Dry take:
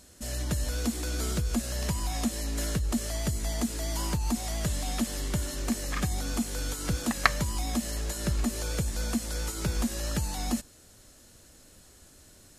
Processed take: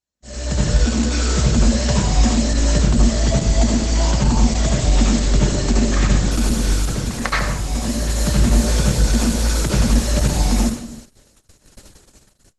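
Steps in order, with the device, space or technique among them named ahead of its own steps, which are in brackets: speakerphone in a meeting room (reverberation RT60 0.70 s, pre-delay 67 ms, DRR -4 dB; level rider gain up to 11.5 dB; gate -34 dBFS, range -35 dB; trim -1 dB; Opus 12 kbps 48 kHz)

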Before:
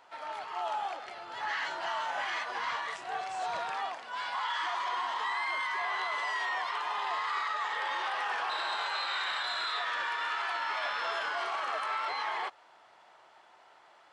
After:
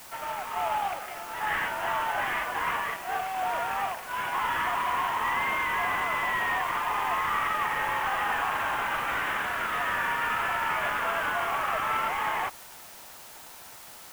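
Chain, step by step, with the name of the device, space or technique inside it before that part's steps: army field radio (band-pass 400–2800 Hz; CVSD coder 16 kbps; white noise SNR 18 dB); trim +6 dB

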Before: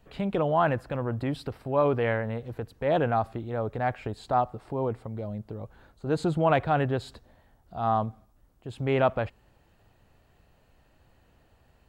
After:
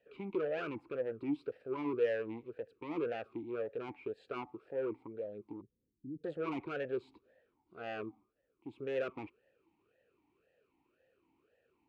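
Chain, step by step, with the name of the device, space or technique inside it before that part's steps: talk box (valve stage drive 27 dB, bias 0.75; talking filter e-u 1.9 Hz); 5.61–6.24 s: inverse Chebyshev low-pass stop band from 850 Hz, stop band 60 dB; trim +6.5 dB

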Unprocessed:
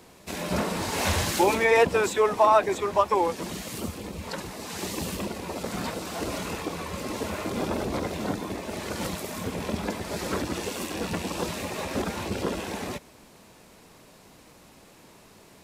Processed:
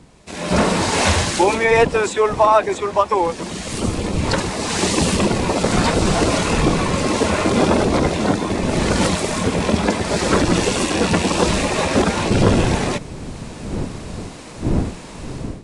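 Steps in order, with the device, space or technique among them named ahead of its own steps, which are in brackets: smartphone video outdoors (wind noise -39 dBFS; level rider gain up to 17 dB; trim -1 dB; AAC 96 kbps 22.05 kHz)

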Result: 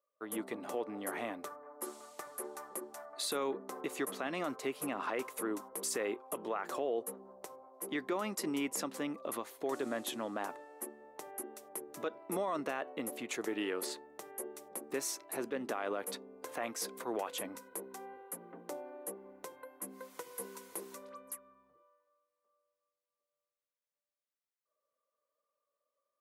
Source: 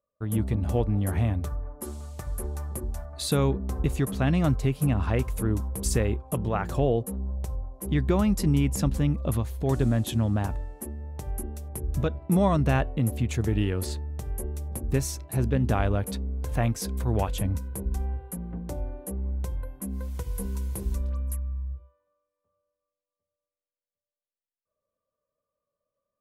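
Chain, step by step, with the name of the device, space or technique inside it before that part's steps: laptop speaker (high-pass 320 Hz 24 dB/octave; peaking EQ 1.2 kHz +5 dB 0.6 oct; peaking EQ 2 kHz +4 dB 0.26 oct; peak limiter -22.5 dBFS, peak gain reduction 11.5 dB); trim -3.5 dB

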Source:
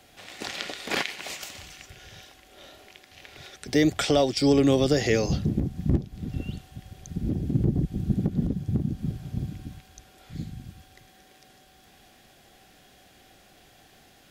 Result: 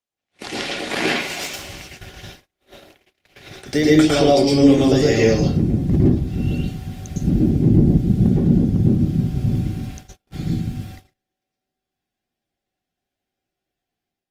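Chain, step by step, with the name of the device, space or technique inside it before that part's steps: speakerphone in a meeting room (reverberation RT60 0.50 s, pre-delay 103 ms, DRR -4.5 dB; level rider gain up to 7 dB; gate -34 dBFS, range -40 dB; trim -1 dB; Opus 24 kbps 48 kHz)

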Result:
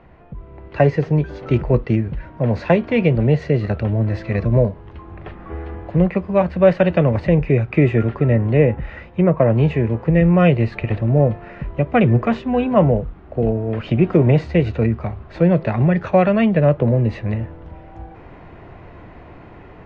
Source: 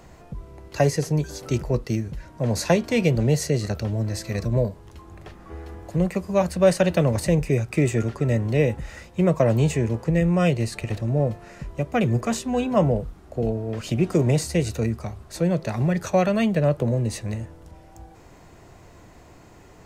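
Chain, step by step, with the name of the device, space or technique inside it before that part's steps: 8.20–9.56 s: low-pass that closes with the level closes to 2.3 kHz, closed at -16.5 dBFS; action camera in a waterproof case (low-pass 2.8 kHz 24 dB/octave; level rider gain up to 8.5 dB; AAC 64 kbps 48 kHz)

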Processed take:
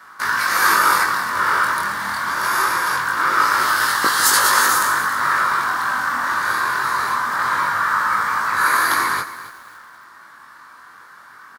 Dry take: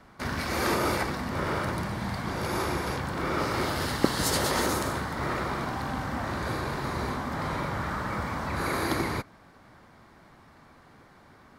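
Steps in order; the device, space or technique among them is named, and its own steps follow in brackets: tilt EQ +4 dB/octave; double-tracked vocal (doubling 21 ms -10.5 dB; chorus 0.24 Hz, delay 18.5 ms, depth 6 ms); high-pass 51 Hz; high-order bell 1.3 kHz +13.5 dB 1.1 oct; bit-crushed delay 272 ms, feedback 35%, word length 7-bit, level -14 dB; trim +4.5 dB

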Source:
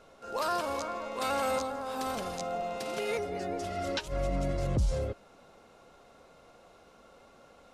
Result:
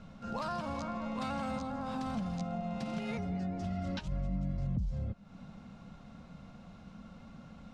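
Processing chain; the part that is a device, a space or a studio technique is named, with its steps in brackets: dynamic bell 740 Hz, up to +4 dB, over -42 dBFS, Q 1.1; jukebox (low-pass 5.7 kHz 12 dB/octave; resonant low shelf 280 Hz +12 dB, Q 3; compression 4:1, threshold -35 dBFS, peak gain reduction 21.5 dB)

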